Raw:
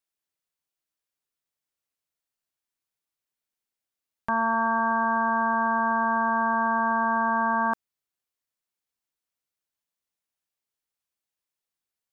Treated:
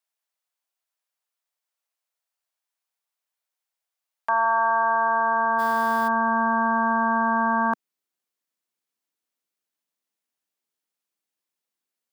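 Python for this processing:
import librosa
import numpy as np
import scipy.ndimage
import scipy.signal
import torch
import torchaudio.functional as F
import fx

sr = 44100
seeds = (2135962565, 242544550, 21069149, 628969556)

y = fx.delta_hold(x, sr, step_db=-36.0, at=(5.58, 6.07), fade=0.02)
y = fx.filter_sweep_highpass(y, sr, from_hz=680.0, to_hz=220.0, start_s=4.52, end_s=6.42, q=1.3)
y = F.gain(torch.from_numpy(y), 1.5).numpy()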